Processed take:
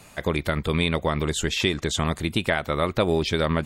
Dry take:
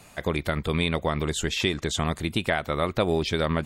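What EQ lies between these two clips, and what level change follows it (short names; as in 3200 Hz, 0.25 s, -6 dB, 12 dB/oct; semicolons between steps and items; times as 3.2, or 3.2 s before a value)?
notch 720 Hz, Q 19; +2.0 dB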